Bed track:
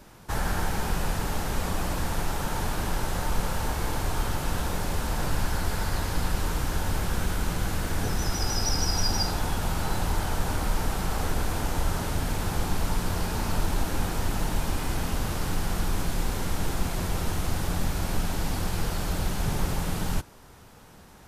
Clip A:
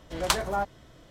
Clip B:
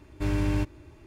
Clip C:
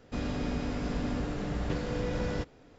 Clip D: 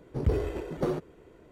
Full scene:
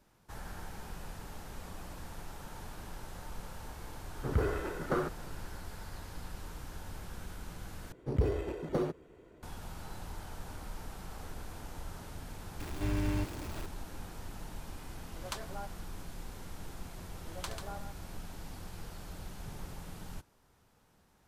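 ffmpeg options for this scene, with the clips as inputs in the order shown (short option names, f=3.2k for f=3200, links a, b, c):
-filter_complex "[4:a]asplit=2[a][b];[1:a]asplit=2[c][d];[0:a]volume=-17dB[e];[a]equalizer=f=1.4k:t=o:w=0.88:g=14.5[f];[2:a]aeval=exprs='val(0)+0.5*0.0266*sgn(val(0))':c=same[g];[d]aecho=1:1:72|141:0.266|0.473[h];[e]asplit=2[i][j];[i]atrim=end=7.924[k];[b]atrim=end=1.51,asetpts=PTS-STARTPTS,volume=-3dB[l];[j]atrim=start=9.426[m];[f]atrim=end=1.51,asetpts=PTS-STARTPTS,volume=-4.5dB,afade=t=in:d=0.004:c=hsin,afade=t=out:st=1.506:d=0.004:c=hsin,adelay=180369S[n];[g]atrim=end=1.06,asetpts=PTS-STARTPTS,volume=-7.5dB,afade=t=in:d=0.004:c=hsin,afade=t=out:st=1.056:d=0.004:c=hsin,adelay=12600[o];[c]atrim=end=1.1,asetpts=PTS-STARTPTS,volume=-16dB,afade=t=in:d=0.004:c=hsin,afade=t=out:st=1.096:d=0.004:c=hsin,adelay=15020[p];[h]atrim=end=1.1,asetpts=PTS-STARTPTS,volume=-17.5dB,afade=t=in:d=0.004:c=hsin,afade=t=out:st=1.096:d=0.004:c=hsin,adelay=17140[q];[k][l]acrossfade=d=0.004:c1=hsin:c2=hsin[r];[r][m]acrossfade=d=0.004:c1=hsin:c2=hsin[s];[s][n][o][p][q]amix=inputs=5:normalize=0"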